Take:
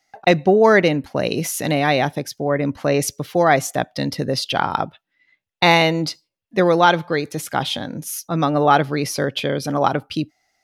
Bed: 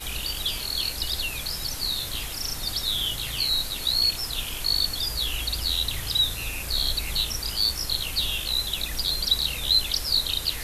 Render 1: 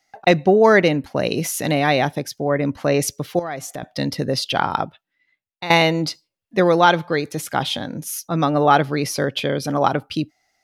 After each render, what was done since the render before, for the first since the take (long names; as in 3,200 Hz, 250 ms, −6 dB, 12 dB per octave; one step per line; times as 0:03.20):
0:03.39–0:03.83: downward compressor 3 to 1, threshold −29 dBFS
0:04.71–0:05.70: fade out, to −16.5 dB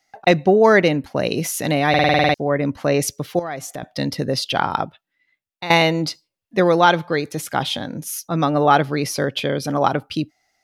0:01.89: stutter in place 0.05 s, 9 plays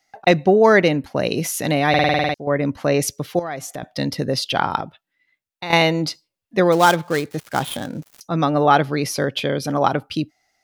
0:01.97–0:02.47: fade out, to −9.5 dB
0:04.77–0:05.73: downward compressor 4 to 1, threshold −22 dBFS
0:06.72–0:08.21: gap after every zero crossing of 0.09 ms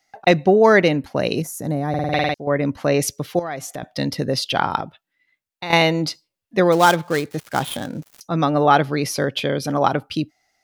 0:01.42–0:02.13: drawn EQ curve 150 Hz 0 dB, 870 Hz −8 dB, 1,700 Hz −14 dB, 2,800 Hz −27 dB, 7,200 Hz −6 dB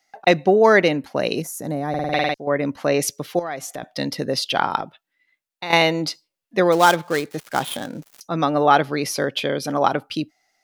parametric band 64 Hz −15 dB 1.9 octaves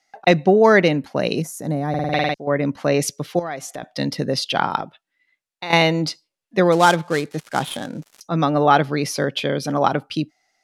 low-pass filter 11,000 Hz 12 dB per octave
dynamic equaliser 160 Hz, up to +6 dB, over −36 dBFS, Q 1.2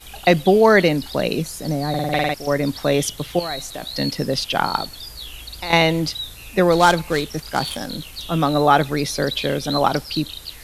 mix in bed −7.5 dB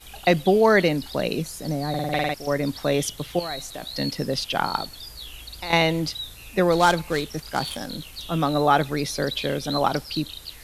level −4 dB